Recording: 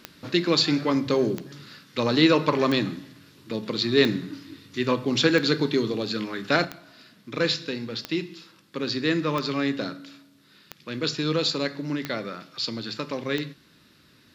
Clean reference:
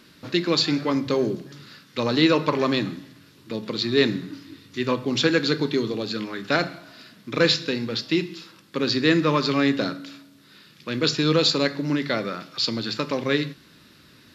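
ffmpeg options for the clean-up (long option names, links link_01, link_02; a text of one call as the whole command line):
ffmpeg -i in.wav -af "adeclick=threshold=4,asetnsamples=nb_out_samples=441:pad=0,asendcmd='6.65 volume volume 5dB',volume=0dB" out.wav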